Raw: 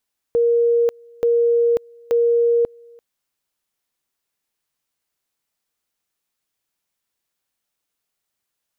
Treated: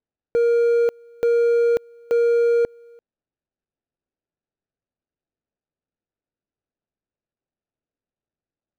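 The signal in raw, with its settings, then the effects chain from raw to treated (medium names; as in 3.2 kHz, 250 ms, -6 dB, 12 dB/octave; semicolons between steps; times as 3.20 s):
two-level tone 470 Hz -13 dBFS, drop 29 dB, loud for 0.54 s, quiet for 0.34 s, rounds 3
median filter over 41 samples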